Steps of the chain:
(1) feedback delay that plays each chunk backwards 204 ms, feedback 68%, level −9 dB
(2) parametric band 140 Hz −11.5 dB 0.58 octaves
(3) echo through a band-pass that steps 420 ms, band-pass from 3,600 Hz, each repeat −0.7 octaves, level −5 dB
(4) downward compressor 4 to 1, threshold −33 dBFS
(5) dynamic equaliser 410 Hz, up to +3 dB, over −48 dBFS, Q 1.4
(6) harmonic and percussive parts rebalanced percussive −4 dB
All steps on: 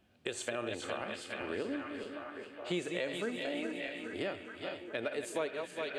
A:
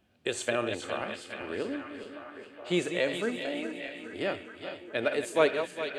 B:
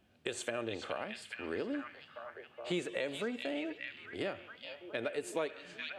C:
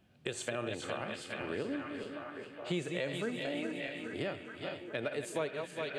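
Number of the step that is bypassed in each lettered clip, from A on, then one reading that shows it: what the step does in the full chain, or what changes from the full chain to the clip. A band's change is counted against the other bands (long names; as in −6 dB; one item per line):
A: 4, change in momentary loudness spread +9 LU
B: 1, change in momentary loudness spread +4 LU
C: 2, 125 Hz band +6.5 dB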